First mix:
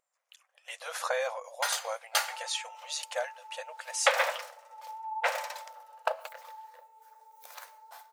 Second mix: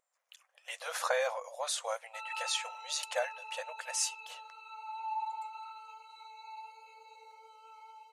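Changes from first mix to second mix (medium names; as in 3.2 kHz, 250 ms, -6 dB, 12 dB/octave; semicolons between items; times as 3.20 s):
first sound: muted; second sound: remove Butterworth band-pass 740 Hz, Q 1.7; reverb: off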